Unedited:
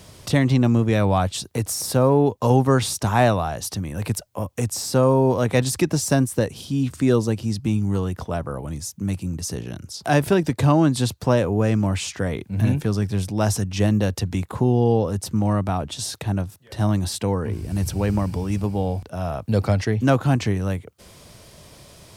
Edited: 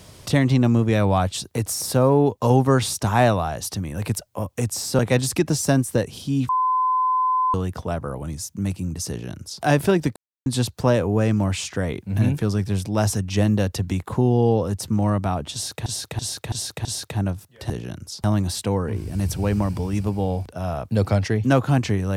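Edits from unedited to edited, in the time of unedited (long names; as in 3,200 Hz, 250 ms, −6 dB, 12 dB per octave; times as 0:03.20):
0:04.99–0:05.42: remove
0:06.92–0:07.97: beep over 1,020 Hz −17 dBFS
0:09.52–0:10.06: duplicate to 0:16.81
0:10.59–0:10.89: silence
0:15.96–0:16.29: repeat, 5 plays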